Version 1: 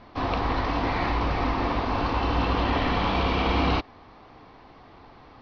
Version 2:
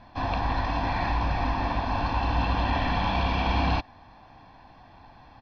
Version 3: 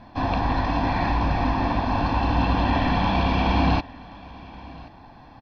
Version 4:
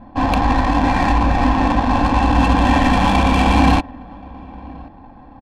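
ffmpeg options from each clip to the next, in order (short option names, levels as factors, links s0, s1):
-af "aecho=1:1:1.2:0.65,volume=0.668"
-af "equalizer=f=250:w=0.61:g=6,aecho=1:1:1077:0.0891,volume=1.26"
-af "aemphasis=mode=production:type=75kf,aecho=1:1:3.8:0.44,adynamicsmooth=sensitivity=1.5:basefreq=980,volume=2"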